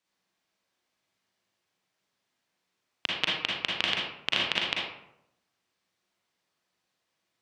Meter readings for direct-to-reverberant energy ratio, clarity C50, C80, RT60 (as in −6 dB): −3.5 dB, −0.5 dB, 4.0 dB, 0.80 s